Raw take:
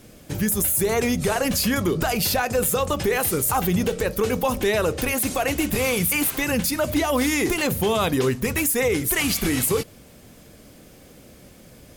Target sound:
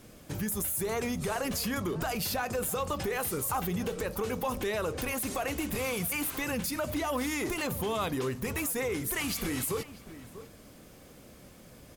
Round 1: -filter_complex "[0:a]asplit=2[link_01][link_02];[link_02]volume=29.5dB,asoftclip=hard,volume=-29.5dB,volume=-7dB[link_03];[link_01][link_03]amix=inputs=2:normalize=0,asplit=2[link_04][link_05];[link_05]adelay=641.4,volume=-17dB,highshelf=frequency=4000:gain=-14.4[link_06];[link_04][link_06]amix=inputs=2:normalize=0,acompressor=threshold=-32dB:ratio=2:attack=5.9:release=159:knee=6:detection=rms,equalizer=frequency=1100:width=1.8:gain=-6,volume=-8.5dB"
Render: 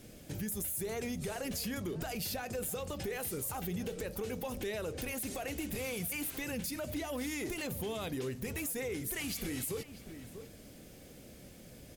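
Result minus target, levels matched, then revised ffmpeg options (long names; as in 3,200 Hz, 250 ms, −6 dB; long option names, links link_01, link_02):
downward compressor: peak gain reduction +5 dB; 1,000 Hz band −5.0 dB
-filter_complex "[0:a]asplit=2[link_01][link_02];[link_02]volume=29.5dB,asoftclip=hard,volume=-29.5dB,volume=-7dB[link_03];[link_01][link_03]amix=inputs=2:normalize=0,asplit=2[link_04][link_05];[link_05]adelay=641.4,volume=-17dB,highshelf=frequency=4000:gain=-14.4[link_06];[link_04][link_06]amix=inputs=2:normalize=0,acompressor=threshold=-22dB:ratio=2:attack=5.9:release=159:knee=6:detection=rms,equalizer=frequency=1100:width=1.8:gain=4,volume=-8.5dB"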